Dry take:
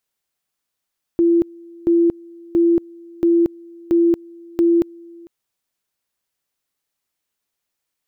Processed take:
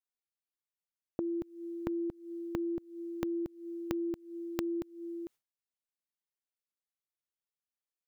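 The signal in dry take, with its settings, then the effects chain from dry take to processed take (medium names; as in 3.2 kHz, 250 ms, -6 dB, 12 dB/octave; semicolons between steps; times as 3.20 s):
two-level tone 339 Hz -11 dBFS, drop 26 dB, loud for 0.23 s, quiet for 0.45 s, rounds 6
dynamic bell 380 Hz, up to -8 dB, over -29 dBFS, Q 1; gate with hold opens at -43 dBFS; compression 6:1, threshold -34 dBFS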